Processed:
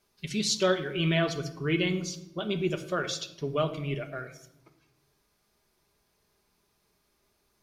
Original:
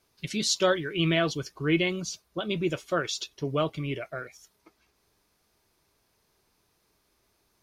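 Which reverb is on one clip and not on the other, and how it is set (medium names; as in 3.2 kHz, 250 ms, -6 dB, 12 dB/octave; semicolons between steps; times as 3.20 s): simulated room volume 2900 m³, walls furnished, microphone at 1.3 m; trim -2.5 dB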